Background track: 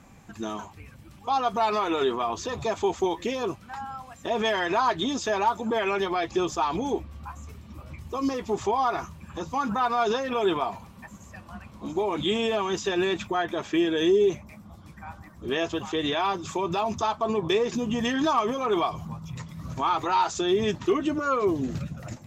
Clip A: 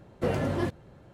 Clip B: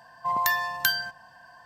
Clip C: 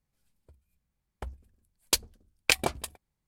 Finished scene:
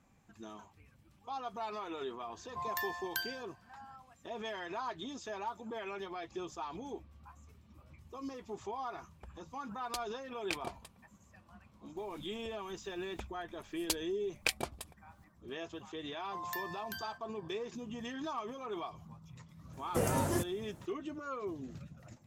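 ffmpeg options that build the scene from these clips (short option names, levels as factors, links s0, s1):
-filter_complex "[2:a]asplit=2[s0][s1];[3:a]asplit=2[s2][s3];[0:a]volume=0.158[s4];[s2]highshelf=f=8500:g=-9[s5];[s3]acompressor=mode=upward:threshold=0.0224:ratio=2.5:attack=17:release=310:knee=2.83:detection=peak[s6];[s1]alimiter=limit=0.398:level=0:latency=1:release=180[s7];[1:a]aexciter=amount=8.3:drive=4.7:freq=5800[s8];[s0]atrim=end=1.65,asetpts=PTS-STARTPTS,volume=0.211,afade=t=in:d=0.004:c=hsin,afade=t=out:st=1.646:d=0.004:c=hsin,adelay=2310[s9];[s5]atrim=end=3.27,asetpts=PTS-STARTPTS,volume=0.188,afade=t=in:d=0.004:c=hsin,afade=t=out:st=3.266:d=0.004:c=hsin,adelay=8010[s10];[s6]atrim=end=3.27,asetpts=PTS-STARTPTS,volume=0.335,afade=t=in:d=0.004:c=hsin,afade=t=out:st=3.266:d=0.004:c=hsin,adelay=11970[s11];[s7]atrim=end=1.65,asetpts=PTS-STARTPTS,volume=0.15,afade=t=in:d=0.004:c=hsin,afade=t=out:st=1.646:d=0.004:c=hsin,adelay=16070[s12];[s8]atrim=end=1.13,asetpts=PTS-STARTPTS,volume=0.596,afade=t=in:d=0.004:c=hsin,afade=t=out:st=1.126:d=0.004:c=hsin,adelay=19730[s13];[s4][s9][s10][s11][s12][s13]amix=inputs=6:normalize=0"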